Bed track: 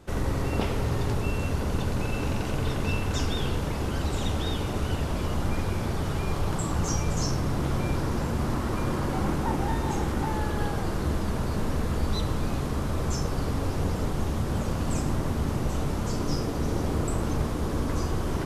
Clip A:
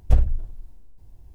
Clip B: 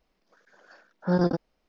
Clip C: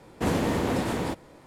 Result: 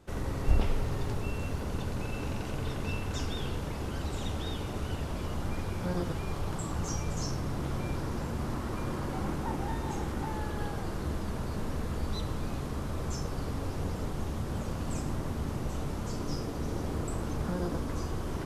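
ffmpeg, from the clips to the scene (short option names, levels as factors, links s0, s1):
-filter_complex "[2:a]asplit=2[s0][s1];[0:a]volume=0.473[s2];[1:a]dynaudnorm=f=110:g=5:m=3.76[s3];[s0]acrusher=bits=10:mix=0:aa=0.000001[s4];[s1]acompressor=threshold=0.0447:ratio=6:attack=3.2:release=140:knee=1:detection=peak[s5];[s3]atrim=end=1.34,asetpts=PTS-STARTPTS,volume=0.355,afade=t=in:d=0.004:c=hsin,afade=t=out:st=1.336:d=0.004:c=hsin,adelay=380[s6];[s4]atrim=end=1.68,asetpts=PTS-STARTPTS,volume=0.266,afade=t=in:d=0.004:c=hsin,afade=t=out:st=1.676:d=0.004:c=hsin,adelay=4760[s7];[s5]atrim=end=1.68,asetpts=PTS-STARTPTS,volume=0.668,afade=t=in:d=0.004:c=hsin,afade=t=out:st=1.676:d=0.004:c=hsin,adelay=16410[s8];[s2][s6][s7][s8]amix=inputs=4:normalize=0"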